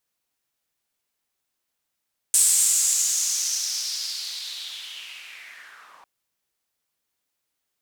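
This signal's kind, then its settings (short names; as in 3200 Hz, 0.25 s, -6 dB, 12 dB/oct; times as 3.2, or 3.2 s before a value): swept filtered noise white, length 3.70 s bandpass, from 8300 Hz, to 900 Hz, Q 4.2, linear, gain ramp -25.5 dB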